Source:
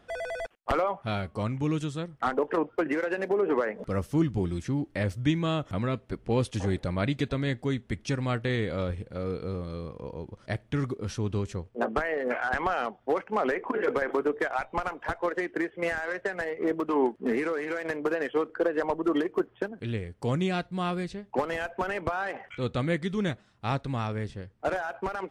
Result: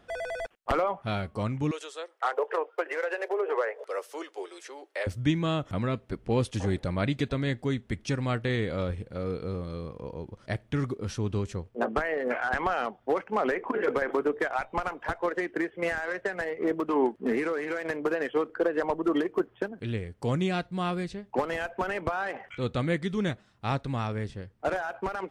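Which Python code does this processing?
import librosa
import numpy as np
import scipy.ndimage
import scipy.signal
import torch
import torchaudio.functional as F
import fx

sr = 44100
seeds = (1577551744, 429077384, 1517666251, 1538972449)

y = fx.steep_highpass(x, sr, hz=410.0, slope=48, at=(1.71, 5.07))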